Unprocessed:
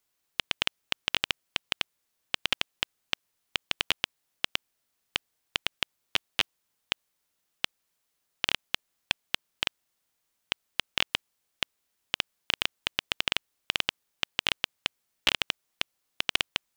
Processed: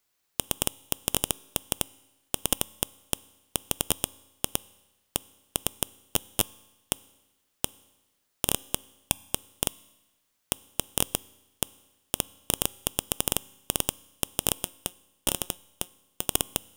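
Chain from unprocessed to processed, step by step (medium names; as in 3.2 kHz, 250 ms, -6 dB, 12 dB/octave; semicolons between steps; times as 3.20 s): tracing distortion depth 0.26 ms; 14.62–16.26 s: feedback comb 180 Hz, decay 0.19 s, harmonics all, mix 40%; on a send: reverberation RT60 1.1 s, pre-delay 4 ms, DRR 20 dB; on the sum: trim +3 dB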